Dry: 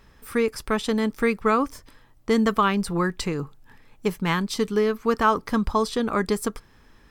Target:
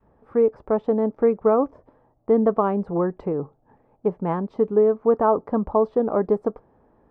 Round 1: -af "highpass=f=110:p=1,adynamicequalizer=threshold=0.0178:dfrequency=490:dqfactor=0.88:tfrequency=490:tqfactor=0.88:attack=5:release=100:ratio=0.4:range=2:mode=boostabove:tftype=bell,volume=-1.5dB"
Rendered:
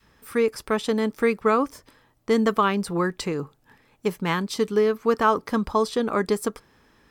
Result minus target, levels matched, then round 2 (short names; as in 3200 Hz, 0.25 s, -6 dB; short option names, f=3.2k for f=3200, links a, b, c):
1000 Hz band +3.0 dB
-af "highpass=f=110:p=1,adynamicequalizer=threshold=0.0178:dfrequency=490:dqfactor=0.88:tfrequency=490:tqfactor=0.88:attack=5:release=100:ratio=0.4:range=2:mode=boostabove:tftype=bell,lowpass=f=710:t=q:w=2.1,volume=-1.5dB"